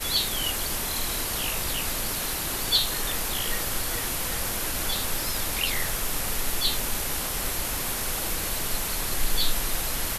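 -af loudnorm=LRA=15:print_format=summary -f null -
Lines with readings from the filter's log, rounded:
Input Integrated:    -26.5 LUFS
Input True Peak:     -10.0 dBTP
Input LRA:             1.6 LU
Input Threshold:     -36.5 LUFS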